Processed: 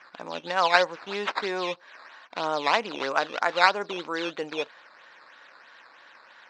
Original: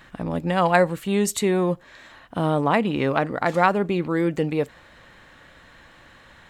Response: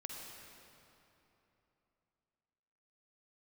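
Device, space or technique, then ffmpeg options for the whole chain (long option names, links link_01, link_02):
circuit-bent sampling toy: -af "acrusher=samples=10:mix=1:aa=0.000001:lfo=1:lforange=10:lforate=3.1,highpass=530,equalizer=frequency=1000:width_type=q:width=4:gain=4,equalizer=frequency=1500:width_type=q:width=4:gain=5,equalizer=frequency=2500:width_type=q:width=4:gain=3,equalizer=frequency=3900:width_type=q:width=4:gain=5,lowpass=frequency=5000:width=0.5412,lowpass=frequency=5000:width=1.3066,volume=-3dB"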